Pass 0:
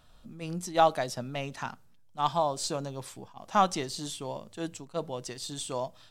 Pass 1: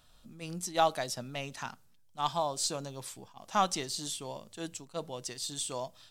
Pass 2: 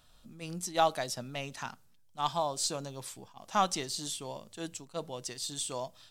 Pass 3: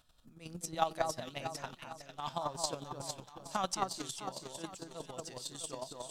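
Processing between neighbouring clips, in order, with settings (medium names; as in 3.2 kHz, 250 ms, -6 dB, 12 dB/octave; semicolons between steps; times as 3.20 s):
treble shelf 2.7 kHz +8.5 dB; trim -5 dB
no audible change
echo whose repeats swap between lows and highs 218 ms, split 1.7 kHz, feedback 67%, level -2.5 dB; square tremolo 11 Hz, depth 60%, duty 20%; trim -2 dB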